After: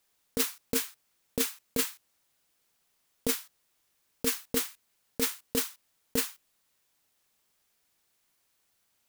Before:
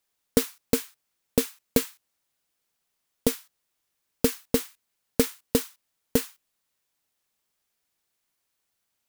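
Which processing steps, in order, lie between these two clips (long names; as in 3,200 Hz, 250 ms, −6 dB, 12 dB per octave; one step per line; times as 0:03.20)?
compressor whose output falls as the input rises −26 dBFS, ratio −1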